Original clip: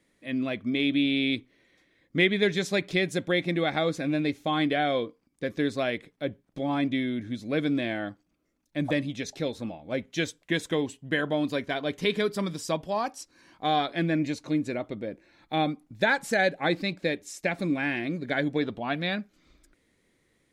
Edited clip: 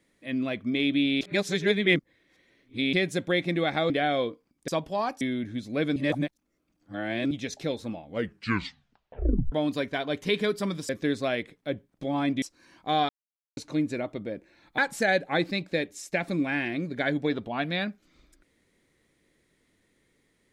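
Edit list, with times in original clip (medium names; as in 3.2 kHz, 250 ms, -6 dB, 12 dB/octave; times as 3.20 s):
1.21–2.93 s: reverse
3.90–4.66 s: delete
5.44–6.97 s: swap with 12.65–13.18 s
7.72–9.07 s: reverse
9.80 s: tape stop 1.48 s
13.85–14.33 s: mute
15.54–16.09 s: delete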